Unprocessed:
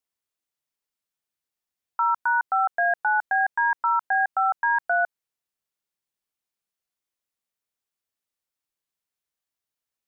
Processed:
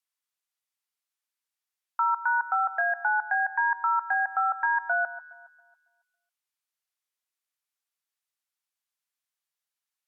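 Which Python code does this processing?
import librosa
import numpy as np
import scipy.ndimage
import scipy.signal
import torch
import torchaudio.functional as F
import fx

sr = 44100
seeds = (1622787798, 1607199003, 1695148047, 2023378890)

y = scipy.signal.sosfilt(scipy.signal.butter(2, 920.0, 'highpass', fs=sr, output='sos'), x)
y = fx.echo_alternate(y, sr, ms=138, hz=1600.0, feedback_pct=52, wet_db=-14)
y = fx.env_lowpass_down(y, sr, base_hz=1700.0, full_db=-21.0)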